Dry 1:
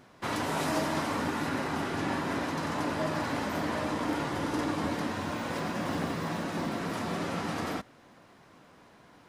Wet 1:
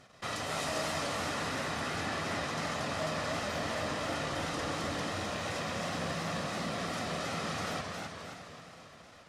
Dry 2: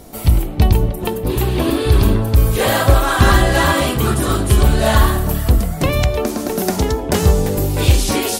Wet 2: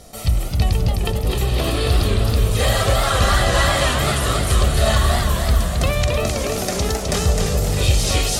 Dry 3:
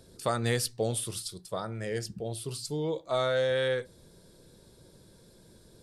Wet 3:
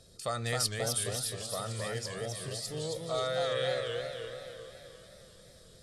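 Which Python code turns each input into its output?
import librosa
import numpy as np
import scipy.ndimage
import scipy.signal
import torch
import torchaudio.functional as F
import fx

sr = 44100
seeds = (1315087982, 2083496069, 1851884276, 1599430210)

p1 = librosa.effects.preemphasis(x, coef=0.8, zi=[0.0])
p2 = p1 + 0.49 * np.pad(p1, (int(1.6 * sr / 1000.0), 0))[:len(p1)]
p3 = fx.level_steps(p2, sr, step_db=17)
p4 = p2 + (p3 * 10.0 ** (3.0 / 20.0))
p5 = fx.air_absorb(p4, sr, metres=76.0)
p6 = p5 + fx.echo_feedback(p5, sr, ms=608, feedback_pct=38, wet_db=-14.5, dry=0)
p7 = fx.echo_warbled(p6, sr, ms=264, feedback_pct=50, rate_hz=2.8, cents=172, wet_db=-4)
y = p7 * 10.0 ** (3.5 / 20.0)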